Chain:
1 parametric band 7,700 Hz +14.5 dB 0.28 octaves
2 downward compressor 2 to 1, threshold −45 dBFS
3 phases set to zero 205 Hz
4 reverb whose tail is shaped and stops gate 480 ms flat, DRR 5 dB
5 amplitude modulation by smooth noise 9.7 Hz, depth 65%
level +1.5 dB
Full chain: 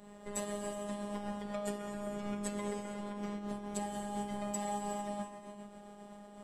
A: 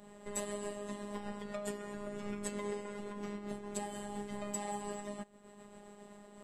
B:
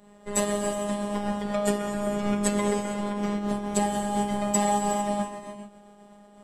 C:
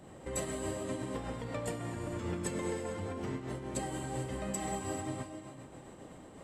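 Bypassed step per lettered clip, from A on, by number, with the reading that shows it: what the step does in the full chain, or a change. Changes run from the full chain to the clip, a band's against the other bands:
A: 4, change in momentary loudness spread +3 LU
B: 2, average gain reduction 10.0 dB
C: 3, 125 Hz band +5.5 dB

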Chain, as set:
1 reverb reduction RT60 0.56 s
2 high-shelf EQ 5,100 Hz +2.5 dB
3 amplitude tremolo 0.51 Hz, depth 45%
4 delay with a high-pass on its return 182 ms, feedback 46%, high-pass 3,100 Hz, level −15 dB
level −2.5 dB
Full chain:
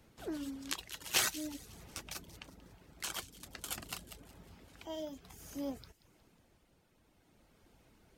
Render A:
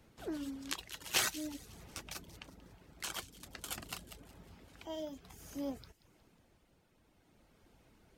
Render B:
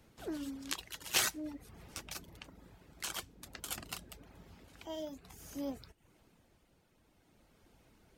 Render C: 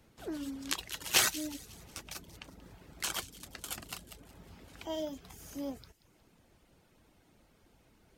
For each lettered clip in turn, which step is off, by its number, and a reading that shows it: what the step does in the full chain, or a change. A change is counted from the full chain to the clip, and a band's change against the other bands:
2, 8 kHz band −1.5 dB
4, echo-to-direct ratio −23.5 dB to none audible
3, change in momentary loudness spread +4 LU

